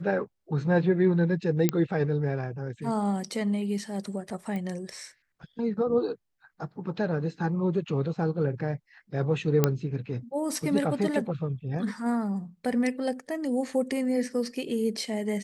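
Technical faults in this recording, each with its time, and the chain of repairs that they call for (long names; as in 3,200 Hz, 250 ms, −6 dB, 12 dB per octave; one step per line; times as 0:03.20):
0:01.69: click −9 dBFS
0:04.56: click −23 dBFS
0:09.64: click −7 dBFS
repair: click removal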